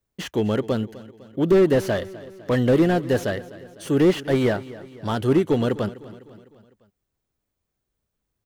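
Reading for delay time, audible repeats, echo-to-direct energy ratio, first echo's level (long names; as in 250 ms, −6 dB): 252 ms, 4, −16.5 dB, −18.0 dB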